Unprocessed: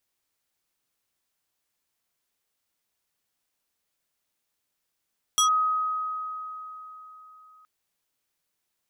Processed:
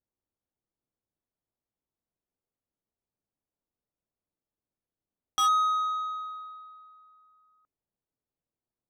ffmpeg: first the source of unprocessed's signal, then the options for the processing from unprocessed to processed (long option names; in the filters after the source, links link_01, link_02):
-f lavfi -i "aevalsrc='0.141*pow(10,-3*t/3.84)*sin(2*PI*1260*t+1.8*clip(1-t/0.11,0,1)*sin(2*PI*3.63*1260*t))':duration=2.27:sample_rate=44100"
-af "adynamicsmooth=sensitivity=2:basefreq=640"